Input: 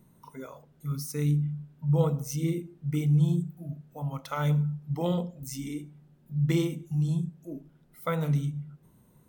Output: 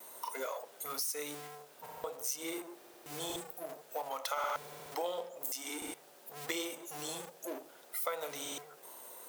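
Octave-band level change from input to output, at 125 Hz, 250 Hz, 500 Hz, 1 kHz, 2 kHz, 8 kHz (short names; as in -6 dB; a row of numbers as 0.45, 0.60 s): -34.5, -17.5, -5.5, 0.0, 0.0, +4.0 dB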